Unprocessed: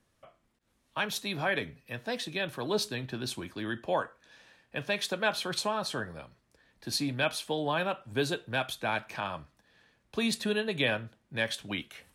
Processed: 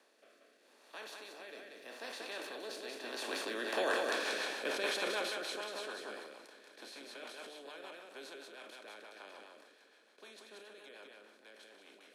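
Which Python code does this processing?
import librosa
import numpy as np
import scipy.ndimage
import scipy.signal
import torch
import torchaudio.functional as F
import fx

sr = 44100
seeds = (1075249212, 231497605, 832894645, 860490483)

p1 = fx.bin_compress(x, sr, power=0.4)
p2 = fx.doppler_pass(p1, sr, speed_mps=10, closest_m=2.6, pass_at_s=4.15)
p3 = scipy.signal.sosfilt(scipy.signal.butter(4, 320.0, 'highpass', fs=sr, output='sos'), p2)
p4 = p3 + fx.echo_single(p3, sr, ms=185, db=-3.5, dry=0)
p5 = fx.rotary_switch(p4, sr, hz=0.8, then_hz=6.7, switch_at_s=3.22)
p6 = fx.sustainer(p5, sr, db_per_s=37.0)
y = p6 * librosa.db_to_amplitude(-1.0)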